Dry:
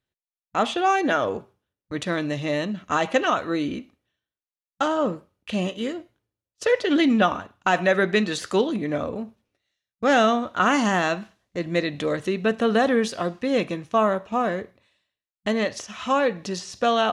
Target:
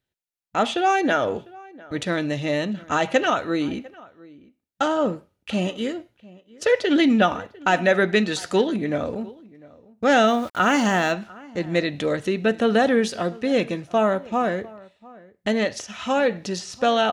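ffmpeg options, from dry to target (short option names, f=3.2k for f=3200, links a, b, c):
-filter_complex "[0:a]asettb=1/sr,asplit=3[a][b][c];[a]atrim=end=10.274[d];[b]atrim=start=10.27:end=11.12,asetpts=PTS-STARTPTS,afade=t=in:d=0.004:c=qsin,afade=t=out:st=0.846:d=0.004:c=qsin,aeval=exprs='val(0)*gte(abs(val(0)),0.01)':c=same[e];[c]atrim=start=11.116[f];[d][e]acrossfade=d=0.004:c1=hsin:c2=qsin[g];[g][f]acrossfade=d=0.004:c1=qsin:c2=hsin,bandreject=f=1.1k:w=6.9,asplit=2[h][i];[i]adelay=699.7,volume=-22dB,highshelf=f=4k:g=-15.7[j];[h][j]amix=inputs=2:normalize=0,volume=1.5dB"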